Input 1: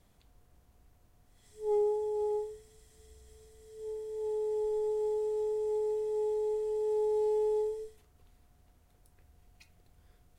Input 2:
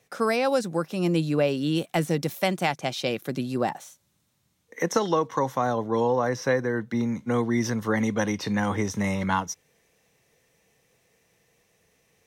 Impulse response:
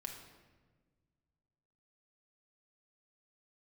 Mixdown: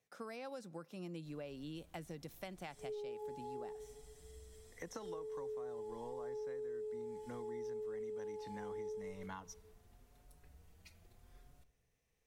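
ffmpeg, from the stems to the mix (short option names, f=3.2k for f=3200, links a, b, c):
-filter_complex "[0:a]alimiter=level_in=5dB:limit=-24dB:level=0:latency=1,volume=-5dB,asplit=2[a][b];[b]adelay=5.2,afreqshift=0.79[c];[a][c]amix=inputs=2:normalize=1,adelay=1250,volume=0.5dB,asplit=2[d][e];[e]volume=-5.5dB[f];[1:a]volume=-19dB,asplit=2[g][h];[h]volume=-20dB[i];[2:a]atrim=start_sample=2205[j];[f][i]amix=inputs=2:normalize=0[k];[k][j]afir=irnorm=-1:irlink=0[l];[d][g][l]amix=inputs=3:normalize=0,acompressor=threshold=-43dB:ratio=6"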